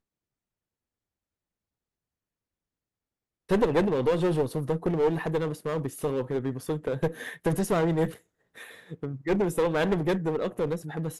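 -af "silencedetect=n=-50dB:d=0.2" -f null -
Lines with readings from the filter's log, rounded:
silence_start: 0.00
silence_end: 3.49 | silence_duration: 3.49
silence_start: 8.20
silence_end: 8.55 | silence_duration: 0.36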